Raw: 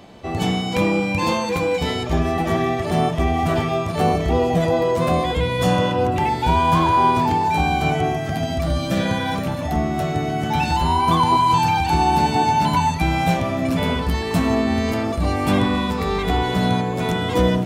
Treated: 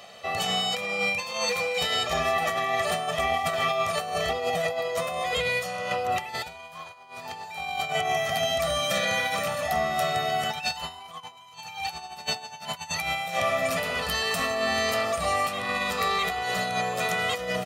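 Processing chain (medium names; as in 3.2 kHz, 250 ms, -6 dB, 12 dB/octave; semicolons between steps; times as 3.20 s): high-pass 1.5 kHz 6 dB/octave; compressor with a negative ratio -30 dBFS, ratio -0.5; comb 1.6 ms, depth 81%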